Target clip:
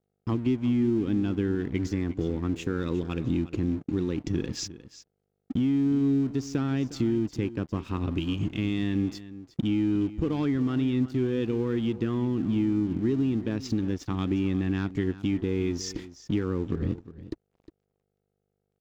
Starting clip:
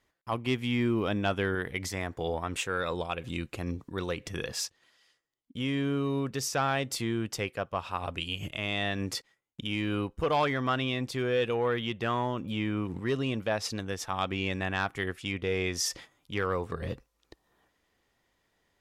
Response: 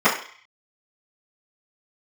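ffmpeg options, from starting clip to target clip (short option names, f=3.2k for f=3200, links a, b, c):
-filter_complex "[0:a]lowshelf=f=450:t=q:w=3:g=13,acompressor=threshold=-30dB:ratio=4,aresample=16000,aeval=exprs='sgn(val(0))*max(abs(val(0))-0.00158,0)':c=same,aresample=44100,aeval=exprs='val(0)+0.000891*(sin(2*PI*50*n/s)+sin(2*PI*2*50*n/s)/2+sin(2*PI*3*50*n/s)/3+sin(2*PI*4*50*n/s)/4+sin(2*PI*5*50*n/s)/5)':c=same,aeval=exprs='sgn(val(0))*max(abs(val(0))-0.00119,0)':c=same,asplit=2[a][b];[b]aecho=0:1:358:0.168[c];[a][c]amix=inputs=2:normalize=0,volume=4dB"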